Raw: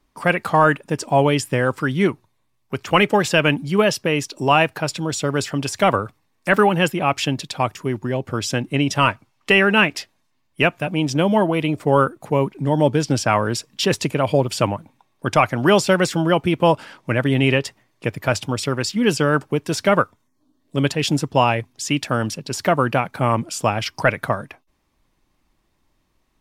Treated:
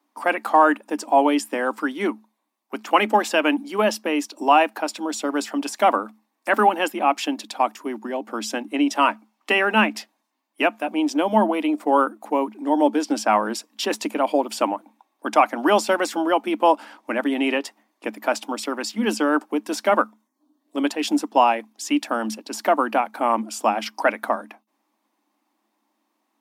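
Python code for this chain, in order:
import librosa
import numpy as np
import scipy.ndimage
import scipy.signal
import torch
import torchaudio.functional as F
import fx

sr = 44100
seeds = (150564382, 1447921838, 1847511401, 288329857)

y = scipy.signal.sosfilt(scipy.signal.cheby1(6, 9, 210.0, 'highpass', fs=sr, output='sos'), x)
y = fx.high_shelf(y, sr, hz=12000.0, db=9.0)
y = y * 10.0 ** (3.0 / 20.0)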